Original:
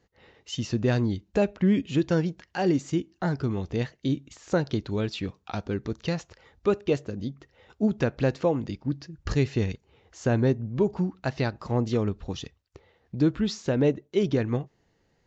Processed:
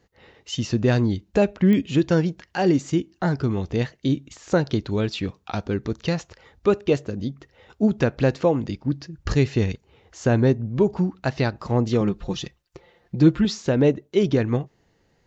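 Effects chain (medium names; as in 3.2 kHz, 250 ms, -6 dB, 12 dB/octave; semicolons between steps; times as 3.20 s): 12.00–13.45 s: comb 5.7 ms, depth 70%; clicks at 1.73 s, -19 dBFS; trim +4.5 dB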